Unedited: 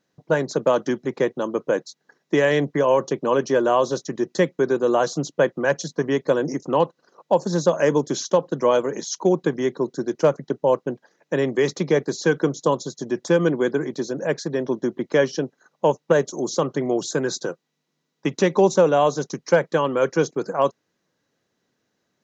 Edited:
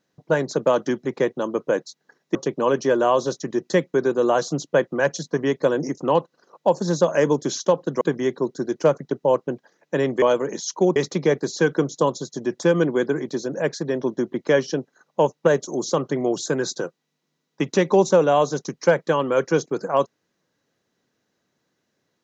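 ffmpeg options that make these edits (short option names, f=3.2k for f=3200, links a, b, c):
-filter_complex "[0:a]asplit=5[a][b][c][d][e];[a]atrim=end=2.352[f];[b]atrim=start=2.998:end=8.662[g];[c]atrim=start=9.398:end=11.612[h];[d]atrim=start=8.658:end=9.402[i];[e]atrim=start=11.608[j];[f][g]acrossfade=d=0.004:c1=hsin:c2=hsin[k];[k][h]acrossfade=d=0.004:c1=hsin:c2=hsin[l];[l][i]acrossfade=d=0.004:c1=hsin:c2=hsin[m];[m][j]acrossfade=d=0.004:c1=hsin:c2=hsin"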